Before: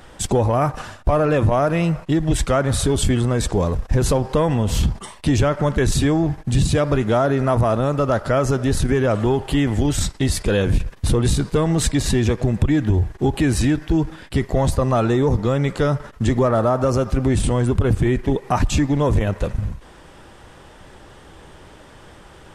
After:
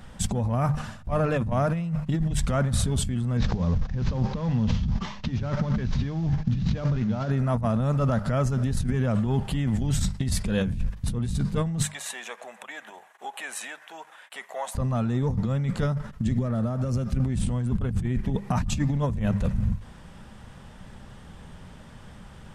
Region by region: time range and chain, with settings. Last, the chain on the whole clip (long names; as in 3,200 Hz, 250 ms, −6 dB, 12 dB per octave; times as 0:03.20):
0:03.37–0:07.31: variable-slope delta modulation 32 kbit/s + notch filter 670 Hz, Q 21 + compressor whose output falls as the input rises −25 dBFS
0:11.83–0:14.75: high-pass filter 640 Hz 24 dB per octave + parametric band 4,800 Hz −11.5 dB 0.5 octaves
0:16.24–0:17.20: parametric band 950 Hz −8 dB 0.96 octaves + downward compressor 4 to 1, threshold −22 dBFS
whole clip: low shelf with overshoot 260 Hz +6.5 dB, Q 3; mains-hum notches 50/100/150/200 Hz; compressor whose output falls as the input rises −16 dBFS, ratio −1; level −8 dB